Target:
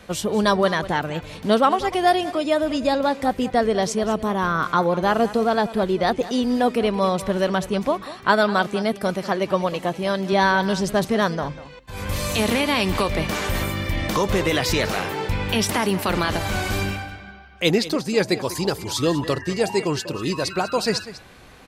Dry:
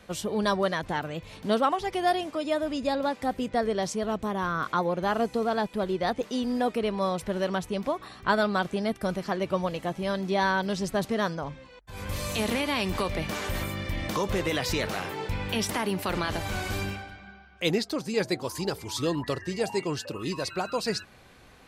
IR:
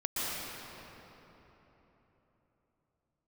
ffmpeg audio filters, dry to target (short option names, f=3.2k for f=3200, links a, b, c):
-filter_complex "[0:a]asettb=1/sr,asplit=3[a][b][c];[a]atrim=end=8.044[d];[b]atrim=start=8.04:end=10.33,asetpts=PTS-STARTPTS,afade=t=in:d=0.004:c=qsin,afade=t=out:st=2.286:d=0.004:c=qsin,highpass=f=180:p=1[e];[c]atrim=start=10.326[f];[d][e]acrossfade=d=0.004:c1=hsin:c2=qsin[g];[g][f]acrossfade=d=0.004:c1=qsin:c2=hsin,aecho=1:1:195:0.168,volume=7dB"